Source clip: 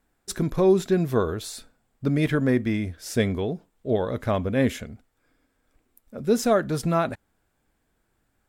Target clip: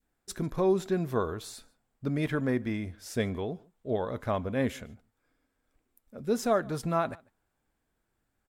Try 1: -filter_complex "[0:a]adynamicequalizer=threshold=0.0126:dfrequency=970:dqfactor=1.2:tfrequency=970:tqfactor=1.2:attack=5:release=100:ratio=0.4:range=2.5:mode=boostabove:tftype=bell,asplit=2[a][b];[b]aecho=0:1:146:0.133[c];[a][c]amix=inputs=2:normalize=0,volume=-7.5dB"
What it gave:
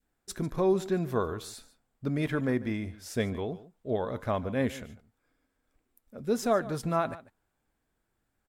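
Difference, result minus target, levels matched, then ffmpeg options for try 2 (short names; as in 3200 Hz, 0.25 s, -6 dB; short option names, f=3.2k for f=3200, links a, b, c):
echo-to-direct +8 dB
-filter_complex "[0:a]adynamicequalizer=threshold=0.0126:dfrequency=970:dqfactor=1.2:tfrequency=970:tqfactor=1.2:attack=5:release=100:ratio=0.4:range=2.5:mode=boostabove:tftype=bell,asplit=2[a][b];[b]aecho=0:1:146:0.0531[c];[a][c]amix=inputs=2:normalize=0,volume=-7.5dB"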